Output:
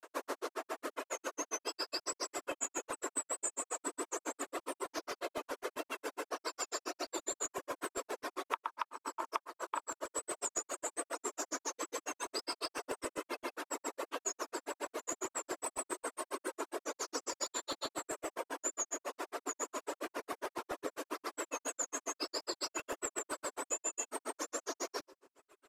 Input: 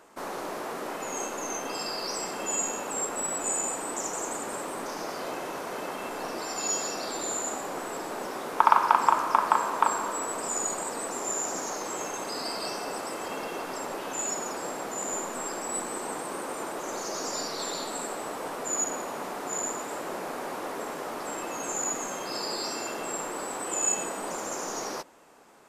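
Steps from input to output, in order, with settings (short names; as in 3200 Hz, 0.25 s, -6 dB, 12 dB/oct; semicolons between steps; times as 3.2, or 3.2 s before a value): reverb removal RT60 1.6 s; vibrato 6.9 Hz 63 cents; steep high-pass 260 Hz 96 dB/oct; feedback echo 60 ms, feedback 53%, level -13 dB; on a send at -21.5 dB: reverb RT60 1.7 s, pre-delay 3 ms; on the sum: grains 84 ms, grains 7.3/s, pitch spread up and down by 0 st; in parallel at -9.5 dB: overloaded stage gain 17.5 dB; on the sum: compressor 8:1, threshold -36 dBFS, peak gain reduction 22 dB; notch 800 Hz, Q 5.1; crackling interface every 0.13 s, samples 128, repeat, from 0.95; gain +2.5 dB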